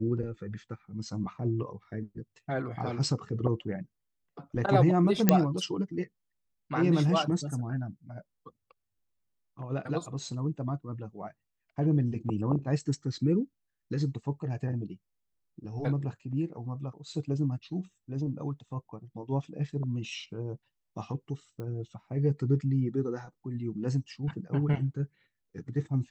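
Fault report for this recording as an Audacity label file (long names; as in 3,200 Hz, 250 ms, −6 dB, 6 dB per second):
5.290000	5.290000	click −5 dBFS
21.600000	21.600000	click −28 dBFS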